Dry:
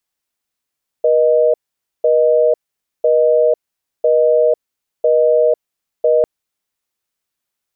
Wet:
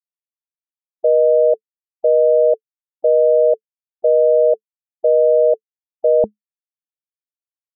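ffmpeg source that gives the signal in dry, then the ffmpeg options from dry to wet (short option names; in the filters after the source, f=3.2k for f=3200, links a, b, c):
-f lavfi -i "aevalsrc='0.251*(sin(2*PI*480*t)+sin(2*PI*620*t))*clip(min(mod(t,1),0.5-mod(t,1))/0.005,0,1)':d=5.2:s=44100"
-af "afftfilt=real='re*gte(hypot(re,im),0.0891)':imag='im*gte(hypot(re,im),0.0891)':win_size=1024:overlap=0.75,equalizer=f=210:w=5.2:g=14,bandreject=f=440:w=12"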